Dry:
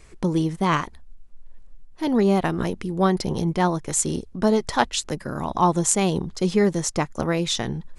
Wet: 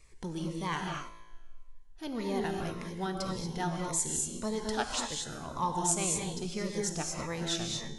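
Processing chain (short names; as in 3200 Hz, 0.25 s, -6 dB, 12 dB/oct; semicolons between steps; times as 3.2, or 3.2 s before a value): bell 230 Hz -8 dB 2.8 oct; resonator 56 Hz, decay 1.4 s, harmonics all, mix 60%; non-linear reverb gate 0.26 s rising, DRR 1.5 dB; cascading phaser falling 1.8 Hz; gain -1.5 dB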